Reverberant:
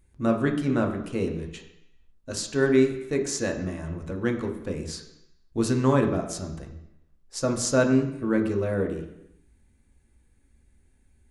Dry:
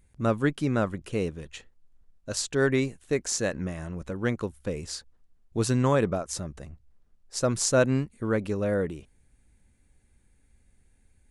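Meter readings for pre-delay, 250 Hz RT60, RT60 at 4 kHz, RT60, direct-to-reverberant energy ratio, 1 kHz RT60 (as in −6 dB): 3 ms, 0.90 s, 0.85 s, 0.85 s, 2.0 dB, 0.85 s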